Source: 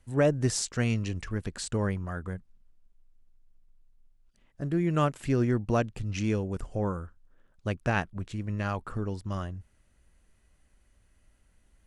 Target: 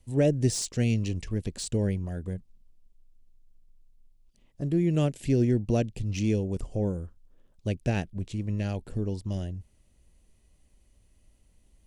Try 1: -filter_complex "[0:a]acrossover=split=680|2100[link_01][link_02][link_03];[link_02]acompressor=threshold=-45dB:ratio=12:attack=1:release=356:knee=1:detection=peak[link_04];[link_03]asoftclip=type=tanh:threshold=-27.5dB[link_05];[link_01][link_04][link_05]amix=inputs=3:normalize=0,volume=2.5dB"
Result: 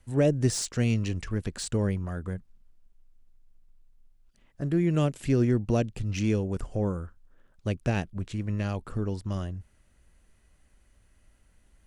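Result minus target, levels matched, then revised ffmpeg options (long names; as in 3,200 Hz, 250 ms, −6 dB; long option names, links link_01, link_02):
1,000 Hz band +3.0 dB
-filter_complex "[0:a]acrossover=split=680|2100[link_01][link_02][link_03];[link_02]acompressor=threshold=-45dB:ratio=12:attack=1:release=356:knee=1:detection=peak,lowpass=frequency=1200:width=0.5412,lowpass=frequency=1200:width=1.3066[link_04];[link_03]asoftclip=type=tanh:threshold=-27.5dB[link_05];[link_01][link_04][link_05]amix=inputs=3:normalize=0,volume=2.5dB"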